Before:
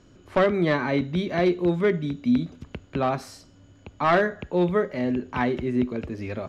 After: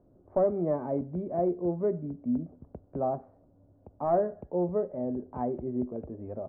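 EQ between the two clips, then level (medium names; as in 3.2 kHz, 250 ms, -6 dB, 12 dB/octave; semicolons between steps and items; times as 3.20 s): four-pole ladder low-pass 820 Hz, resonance 45%; 0.0 dB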